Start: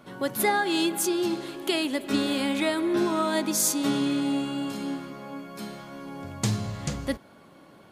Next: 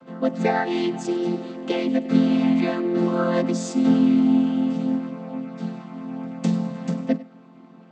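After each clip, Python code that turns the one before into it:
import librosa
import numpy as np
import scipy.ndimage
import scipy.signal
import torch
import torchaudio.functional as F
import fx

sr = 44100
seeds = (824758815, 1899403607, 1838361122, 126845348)

y = fx.chord_vocoder(x, sr, chord='major triad', root=53)
y = y + 10.0 ** (-19.5 / 20.0) * np.pad(y, (int(99 * sr / 1000.0), 0))[:len(y)]
y = y * librosa.db_to_amplitude(6.5)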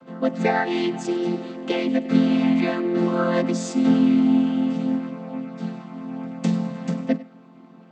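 y = fx.dynamic_eq(x, sr, hz=2100.0, q=1.0, threshold_db=-45.0, ratio=4.0, max_db=3)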